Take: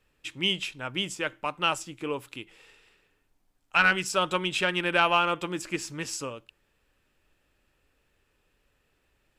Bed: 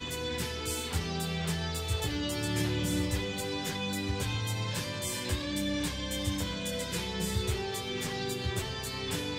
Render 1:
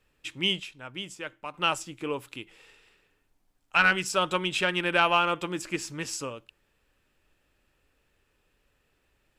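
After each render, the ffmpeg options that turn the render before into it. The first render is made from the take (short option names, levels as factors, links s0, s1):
-filter_complex "[0:a]asplit=3[s0][s1][s2];[s0]atrim=end=0.602[s3];[s1]atrim=start=0.598:end=1.542,asetpts=PTS-STARTPTS,volume=0.447[s4];[s2]atrim=start=1.538[s5];[s3][s4]acrossfade=d=0.004:c1=hsin:c2=hsin[s6];[s6][s5]acrossfade=d=0.004:c1=hsin:c2=hsin"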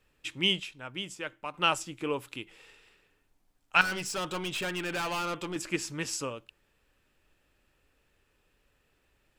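-filter_complex "[0:a]asettb=1/sr,asplit=3[s0][s1][s2];[s0]atrim=end=3.814[s3];[s1]atrim=start=3.81:end=5.56,asetpts=PTS-STARTPTS,afade=t=in:d=0.004:c=qsin,afade=t=out:st=1.746:d=0.004:c=qsin,aeval=exprs='(tanh(31.6*val(0)+0.15)-tanh(0.15))/31.6':c=same[s4];[s2]atrim=start=5.556[s5];[s3][s4]acrossfade=d=0.004:c1=hsin:c2=qsin[s6];[s6][s5]acrossfade=d=0.004:c1=qsin:c2=hsin"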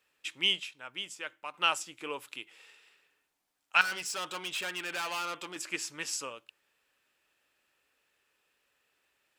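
-af "highpass=f=990:p=1"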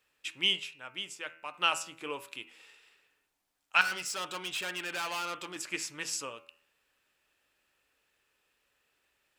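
-af "lowshelf=f=93:g=8.5,bandreject=f=81.12:t=h:w=4,bandreject=f=162.24:t=h:w=4,bandreject=f=243.36:t=h:w=4,bandreject=f=324.48:t=h:w=4,bandreject=f=405.6:t=h:w=4,bandreject=f=486.72:t=h:w=4,bandreject=f=567.84:t=h:w=4,bandreject=f=648.96:t=h:w=4,bandreject=f=730.08:t=h:w=4,bandreject=f=811.2:t=h:w=4,bandreject=f=892.32:t=h:w=4,bandreject=f=973.44:t=h:w=4,bandreject=f=1054.56:t=h:w=4,bandreject=f=1135.68:t=h:w=4,bandreject=f=1216.8:t=h:w=4,bandreject=f=1297.92:t=h:w=4,bandreject=f=1379.04:t=h:w=4,bandreject=f=1460.16:t=h:w=4,bandreject=f=1541.28:t=h:w=4,bandreject=f=1622.4:t=h:w=4,bandreject=f=1703.52:t=h:w=4,bandreject=f=1784.64:t=h:w=4,bandreject=f=1865.76:t=h:w=4,bandreject=f=1946.88:t=h:w=4,bandreject=f=2028:t=h:w=4,bandreject=f=2109.12:t=h:w=4,bandreject=f=2190.24:t=h:w=4,bandreject=f=2271.36:t=h:w=4,bandreject=f=2352.48:t=h:w=4,bandreject=f=2433.6:t=h:w=4,bandreject=f=2514.72:t=h:w=4,bandreject=f=2595.84:t=h:w=4,bandreject=f=2676.96:t=h:w=4,bandreject=f=2758.08:t=h:w=4,bandreject=f=2839.2:t=h:w=4,bandreject=f=2920.32:t=h:w=4"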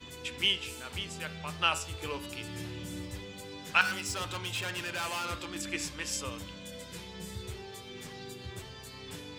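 -filter_complex "[1:a]volume=0.316[s0];[0:a][s0]amix=inputs=2:normalize=0"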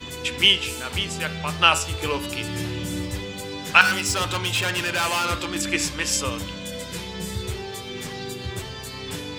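-af "volume=3.76,alimiter=limit=0.891:level=0:latency=1"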